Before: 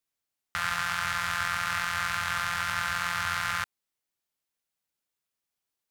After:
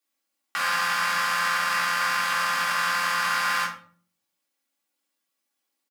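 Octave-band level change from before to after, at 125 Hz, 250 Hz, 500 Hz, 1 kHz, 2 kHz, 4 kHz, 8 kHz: -5.5, +2.0, +7.5, +6.0, +5.0, +5.5, +5.0 dB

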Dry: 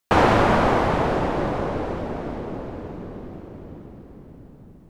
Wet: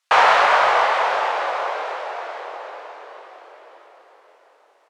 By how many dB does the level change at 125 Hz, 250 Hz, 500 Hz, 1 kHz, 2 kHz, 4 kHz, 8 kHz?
under -25 dB, -23.0 dB, -1.0 dB, +5.5 dB, +7.5 dB, +7.5 dB, n/a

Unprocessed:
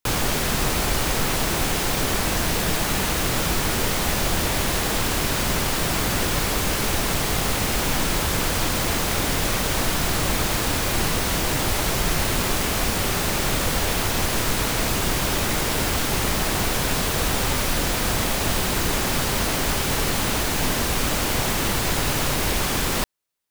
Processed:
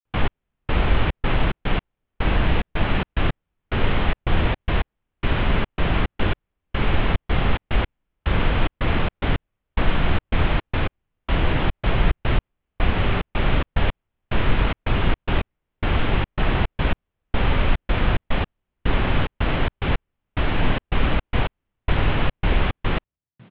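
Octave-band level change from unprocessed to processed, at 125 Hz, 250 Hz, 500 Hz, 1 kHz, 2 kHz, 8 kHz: +3.0 dB, -0.5 dB, -2.0 dB, -2.5 dB, -2.5 dB, under -40 dB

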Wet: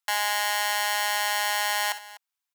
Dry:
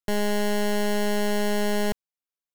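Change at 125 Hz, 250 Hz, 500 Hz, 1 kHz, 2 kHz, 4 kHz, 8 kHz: n/a, under -40 dB, -12.0 dB, +5.5 dB, +6.5 dB, +7.0 dB, +7.0 dB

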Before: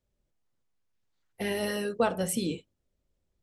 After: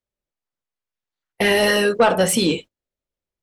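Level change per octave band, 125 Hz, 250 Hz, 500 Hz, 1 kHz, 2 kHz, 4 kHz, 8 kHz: +9.5, +10.0, +12.5, +13.0, +16.5, +16.5, +11.5 dB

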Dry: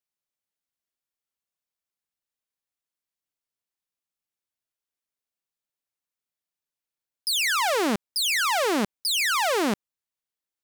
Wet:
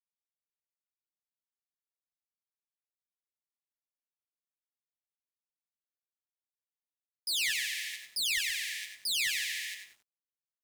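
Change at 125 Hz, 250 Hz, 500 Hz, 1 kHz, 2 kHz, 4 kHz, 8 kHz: under -25 dB, under -35 dB, under -40 dB, under -40 dB, -7.0 dB, -6.0 dB, -6.0 dB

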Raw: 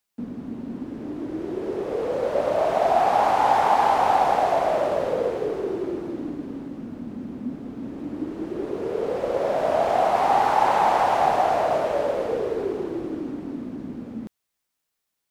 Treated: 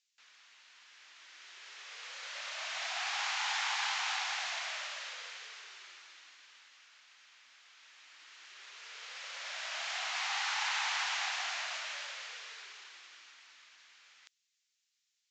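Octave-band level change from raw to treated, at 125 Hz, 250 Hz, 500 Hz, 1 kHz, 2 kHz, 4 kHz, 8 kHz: under -40 dB, under -40 dB, -34.0 dB, -21.5 dB, -2.5 dB, +3.5 dB, +3.0 dB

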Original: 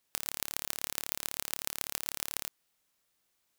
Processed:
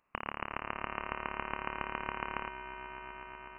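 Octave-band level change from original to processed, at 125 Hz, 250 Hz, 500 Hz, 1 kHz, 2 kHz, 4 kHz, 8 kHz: +5.5 dB, +7.0 dB, +6.5 dB, +11.5 dB, +5.5 dB, -11.0 dB, under -40 dB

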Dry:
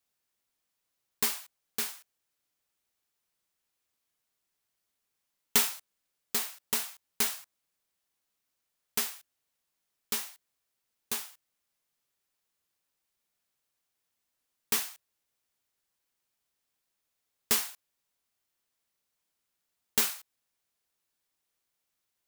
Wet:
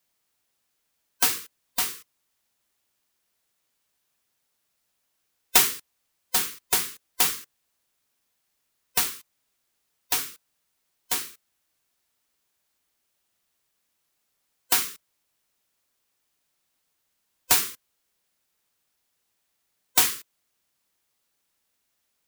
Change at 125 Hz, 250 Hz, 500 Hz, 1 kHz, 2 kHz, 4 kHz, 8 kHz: +6.5, +2.0, +3.5, +9.5, +7.0, +7.0, +7.0 dB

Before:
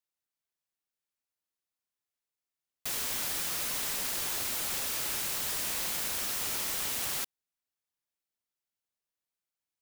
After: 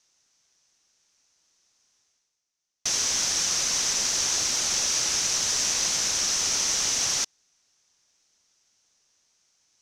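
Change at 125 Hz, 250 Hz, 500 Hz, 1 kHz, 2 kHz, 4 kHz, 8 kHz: +4.5, +4.5, +4.5, +4.5, +5.5, +11.5, +12.5 dB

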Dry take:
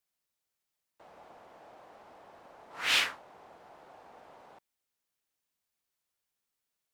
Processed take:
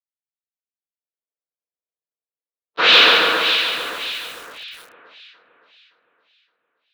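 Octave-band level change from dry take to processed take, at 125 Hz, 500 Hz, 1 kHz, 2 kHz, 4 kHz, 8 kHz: n/a, +24.0 dB, +20.5 dB, +17.5 dB, +19.5 dB, +6.0 dB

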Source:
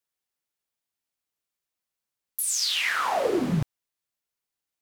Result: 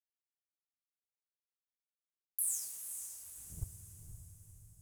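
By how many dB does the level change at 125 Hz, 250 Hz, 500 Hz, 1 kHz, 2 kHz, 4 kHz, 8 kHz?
-17.0 dB, under -30 dB, under -40 dB, under -40 dB, under -40 dB, -31.0 dB, -8.0 dB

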